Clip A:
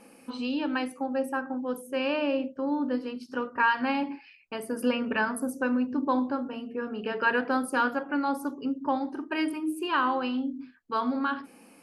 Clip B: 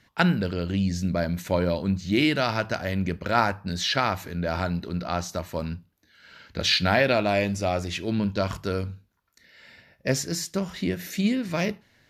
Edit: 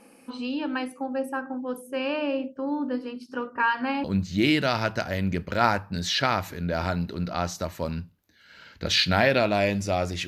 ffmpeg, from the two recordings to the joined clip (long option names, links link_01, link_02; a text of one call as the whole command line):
ffmpeg -i cue0.wav -i cue1.wav -filter_complex "[0:a]apad=whole_dur=10.27,atrim=end=10.27,atrim=end=4.042[link_01];[1:a]atrim=start=1.778:end=8.01[link_02];[link_01][link_02]acrossfade=duration=0.004:curve1=hsin:curve2=hsin" out.wav